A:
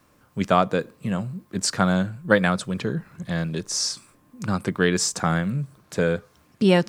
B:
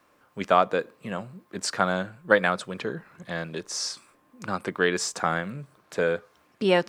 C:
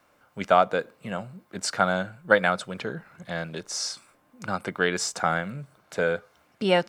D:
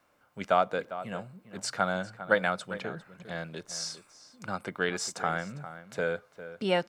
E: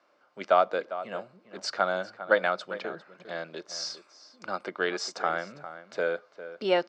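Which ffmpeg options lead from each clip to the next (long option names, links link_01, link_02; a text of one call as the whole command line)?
ffmpeg -i in.wav -af "bass=frequency=250:gain=-14,treble=frequency=4000:gain=-7" out.wav
ffmpeg -i in.wav -af "aecho=1:1:1.4:0.31" out.wav
ffmpeg -i in.wav -filter_complex "[0:a]asplit=2[link_01][link_02];[link_02]adelay=402.3,volume=-13dB,highshelf=frequency=4000:gain=-9.05[link_03];[link_01][link_03]amix=inputs=2:normalize=0,volume=-5.5dB" out.wav
ffmpeg -i in.wav -af "highpass=290,equalizer=frequency=350:width_type=q:width=4:gain=6,equalizer=frequency=600:width_type=q:width=4:gain=5,equalizer=frequency=1200:width_type=q:width=4:gain=3,equalizer=frequency=4700:width_type=q:width=4:gain=5,lowpass=frequency=6000:width=0.5412,lowpass=frequency=6000:width=1.3066" out.wav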